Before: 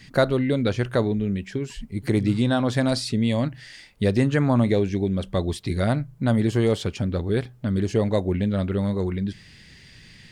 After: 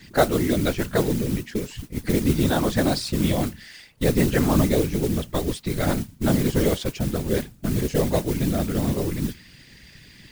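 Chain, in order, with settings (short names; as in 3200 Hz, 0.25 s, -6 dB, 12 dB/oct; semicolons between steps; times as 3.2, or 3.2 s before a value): modulation noise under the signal 15 dB; whisperiser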